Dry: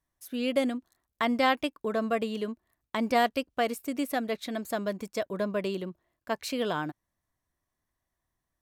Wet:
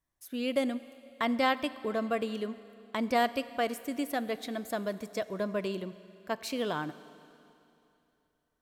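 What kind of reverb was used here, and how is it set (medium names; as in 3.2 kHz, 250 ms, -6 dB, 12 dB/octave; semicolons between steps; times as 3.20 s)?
Schroeder reverb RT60 2.9 s, combs from 30 ms, DRR 15 dB; trim -2.5 dB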